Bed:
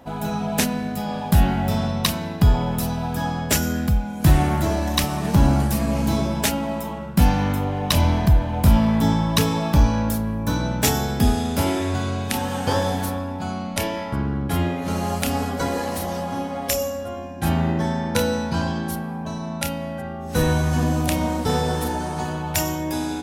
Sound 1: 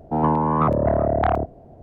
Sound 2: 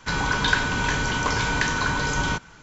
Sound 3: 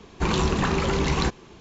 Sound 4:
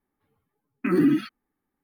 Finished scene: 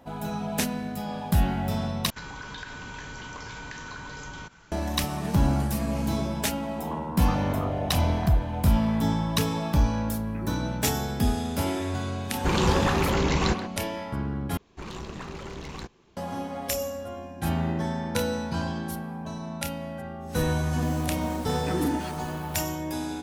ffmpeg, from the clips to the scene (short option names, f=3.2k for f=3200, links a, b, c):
-filter_complex "[4:a]asplit=2[a][b];[3:a]asplit=2[c][d];[0:a]volume=-6dB[e];[2:a]acompressor=threshold=-32dB:ratio=5:attack=13:release=90:knee=1:detection=rms[f];[1:a]aecho=1:1:325:0.631[g];[c]asplit=2[h][i];[i]adelay=130,highpass=300,lowpass=3.4k,asoftclip=type=hard:threshold=-20dB,volume=-8dB[j];[h][j]amix=inputs=2:normalize=0[k];[d]aeval=exprs='clip(val(0),-1,0.0501)':c=same[l];[b]aeval=exprs='val(0)+0.5*0.0335*sgn(val(0))':c=same[m];[e]asplit=3[n][o][p];[n]atrim=end=2.104[q];[f]atrim=end=2.62,asetpts=PTS-STARTPTS,volume=-6dB[r];[o]atrim=start=4.716:end=14.574[s];[l]atrim=end=1.6,asetpts=PTS-STARTPTS,volume=-13dB[t];[p]atrim=start=16.166[u];[g]atrim=end=1.82,asetpts=PTS-STARTPTS,volume=-14.5dB,afade=t=in:d=0.004:c=hsin,afade=t=out:st=1.816:d=0.004:c=hsin,adelay=6670[v];[a]atrim=end=1.83,asetpts=PTS-STARTPTS,volume=-17.5dB,afade=t=in:d=0.004:c=hsin,afade=t=out:st=1.826:d=0.004:c=hsin,adelay=9500[w];[k]atrim=end=1.6,asetpts=PTS-STARTPTS,volume=-1dB,afade=t=in:d=0.004:c=hsin,afade=t=out:st=1.596:d=0.004:c=hsin,adelay=12240[x];[m]atrim=end=1.83,asetpts=PTS-STARTPTS,volume=-9.5dB,afade=t=in:d=0.004:c=hsin,afade=t=out:st=1.826:d=0.004:c=hsin,adelay=20820[y];[q][r]acrossfade=d=0.004:c1=hsin:c2=hsin[z];[z][s]acrossfade=d=0.004:c1=hsin:c2=hsin[aa];[aa][t]acrossfade=d=0.004:c1=hsin:c2=hsin[ab];[ab][u]acrossfade=d=0.004:c1=hsin:c2=hsin[ac];[ac][v][w][x][y]amix=inputs=5:normalize=0"